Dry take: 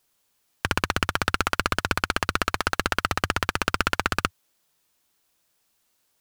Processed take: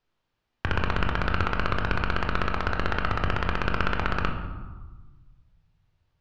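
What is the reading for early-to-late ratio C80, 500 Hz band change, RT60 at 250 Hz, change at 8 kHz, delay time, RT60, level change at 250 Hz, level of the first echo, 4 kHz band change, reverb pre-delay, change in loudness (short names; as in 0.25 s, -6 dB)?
8.0 dB, -0.5 dB, 1.7 s, under -20 dB, none, 1.3 s, 0.0 dB, none, -8.0 dB, 20 ms, -2.5 dB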